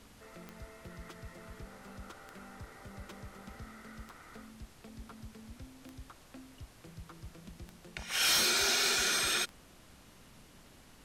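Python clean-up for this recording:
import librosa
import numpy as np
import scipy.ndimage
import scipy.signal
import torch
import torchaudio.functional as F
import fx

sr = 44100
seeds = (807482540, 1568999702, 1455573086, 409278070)

y = fx.fix_declick_ar(x, sr, threshold=10.0)
y = fx.noise_reduce(y, sr, print_start_s=9.65, print_end_s=10.15, reduce_db=22.0)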